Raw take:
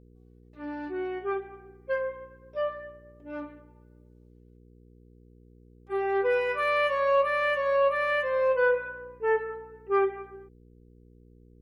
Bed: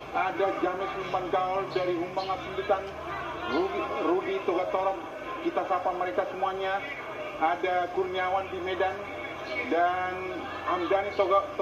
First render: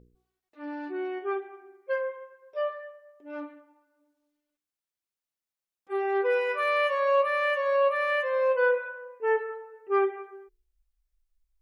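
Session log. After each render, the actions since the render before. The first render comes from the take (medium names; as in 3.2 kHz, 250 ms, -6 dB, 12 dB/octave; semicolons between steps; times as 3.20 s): de-hum 60 Hz, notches 8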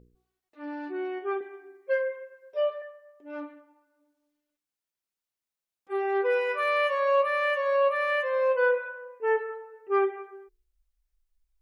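1.40–2.82 s: comb 7.1 ms, depth 88%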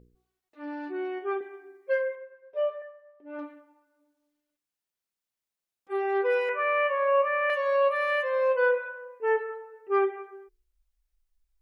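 2.15–3.39 s: distance through air 340 m; 6.49–7.50 s: steep low-pass 2.7 kHz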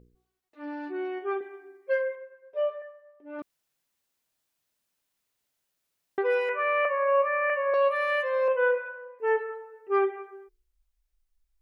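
3.42–6.18 s: room tone; 6.85–7.74 s: steep low-pass 2.7 kHz 72 dB/octave; 8.48–9.19 s: Chebyshev low-pass 3.3 kHz, order 5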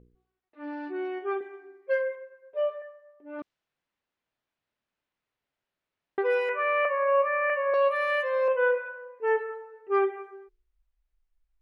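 level-controlled noise filter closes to 2.6 kHz, open at -25.5 dBFS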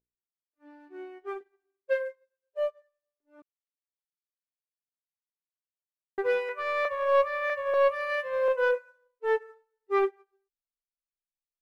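waveshaping leveller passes 1; upward expansion 2.5:1, over -42 dBFS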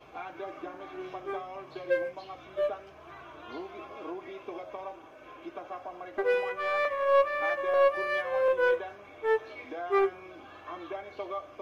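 add bed -13 dB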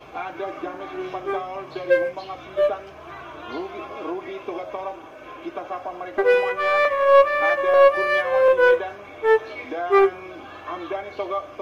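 trim +9.5 dB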